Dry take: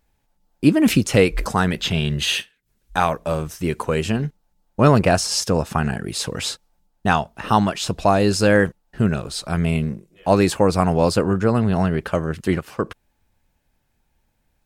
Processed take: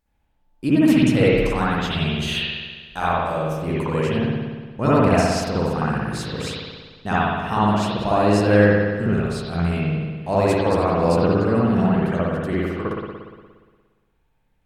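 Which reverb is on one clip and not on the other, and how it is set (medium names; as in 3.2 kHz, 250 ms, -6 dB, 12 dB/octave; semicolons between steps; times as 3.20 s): spring tank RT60 1.5 s, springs 58 ms, chirp 40 ms, DRR -8.5 dB; trim -9.5 dB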